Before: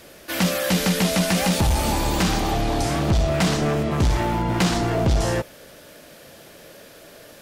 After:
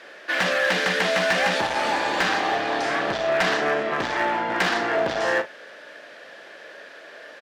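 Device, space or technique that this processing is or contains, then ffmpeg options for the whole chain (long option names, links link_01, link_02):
megaphone: -filter_complex "[0:a]highpass=470,lowpass=3600,equalizer=frequency=1700:width_type=o:width=0.37:gain=9,asoftclip=type=hard:threshold=-18dB,asplit=2[link_01][link_02];[link_02]adelay=38,volume=-10.5dB[link_03];[link_01][link_03]amix=inputs=2:normalize=0,volume=2.5dB"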